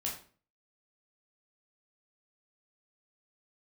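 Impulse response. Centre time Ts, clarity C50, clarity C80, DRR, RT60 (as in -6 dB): 30 ms, 6.5 dB, 11.0 dB, -3.0 dB, 0.40 s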